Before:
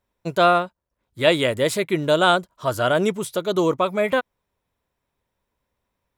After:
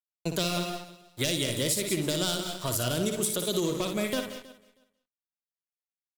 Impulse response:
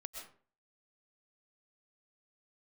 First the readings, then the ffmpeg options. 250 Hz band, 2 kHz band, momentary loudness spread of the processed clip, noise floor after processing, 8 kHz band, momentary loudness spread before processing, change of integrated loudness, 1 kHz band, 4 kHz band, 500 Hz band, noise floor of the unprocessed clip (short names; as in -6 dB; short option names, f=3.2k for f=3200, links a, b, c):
-5.5 dB, -12.0 dB, 8 LU, under -85 dBFS, +5.5 dB, 8 LU, -8.0 dB, -17.0 dB, -3.5 dB, -11.5 dB, -79 dBFS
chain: -filter_complex "[0:a]asoftclip=type=hard:threshold=-13.5dB,acrossover=split=360|3000[a][b][c];[b]acompressor=threshold=-35dB:ratio=5[d];[a][d][c]amix=inputs=3:normalize=0,highshelf=f=3.8k:g=11,asplit=2[e][f];[f]adelay=137,lowpass=f=1k:p=1,volume=-15dB,asplit=2[g][h];[h]adelay=137,lowpass=f=1k:p=1,volume=0.36,asplit=2[i][j];[j]adelay=137,lowpass=f=1k:p=1,volume=0.36[k];[e][g][i][k]amix=inputs=4:normalize=0,asplit=2[l][m];[1:a]atrim=start_sample=2205,afade=t=out:st=0.25:d=0.01,atrim=end_sample=11466,adelay=58[n];[m][n]afir=irnorm=-1:irlink=0,volume=-1dB[o];[l][o]amix=inputs=2:normalize=0,aeval=exprs='sgn(val(0))*max(abs(val(0))-0.00841,0)':c=same,asplit=2[p][q];[q]aecho=0:1:318|636:0.0794|0.0119[r];[p][r]amix=inputs=2:normalize=0,acompressor=threshold=-24dB:ratio=6"